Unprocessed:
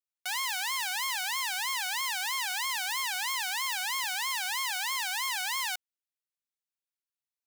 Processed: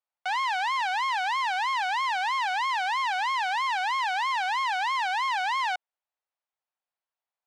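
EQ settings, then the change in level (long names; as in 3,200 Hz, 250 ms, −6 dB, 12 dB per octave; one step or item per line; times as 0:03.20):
band-pass filter 580–3,700 Hz
parametric band 740 Hz +14 dB 1.7 octaves
0.0 dB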